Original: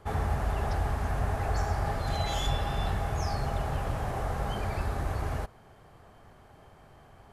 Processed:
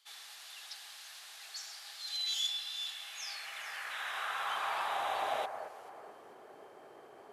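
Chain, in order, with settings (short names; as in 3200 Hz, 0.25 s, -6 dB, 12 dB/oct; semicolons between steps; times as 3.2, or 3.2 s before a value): high-pass sweep 3800 Hz -> 390 Hz, 2.76–6.13; echo with dull and thin repeats by turns 0.219 s, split 2400 Hz, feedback 58%, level -8 dB; painted sound noise, 3.9–5.46, 990–4000 Hz -44 dBFS; gain -1.5 dB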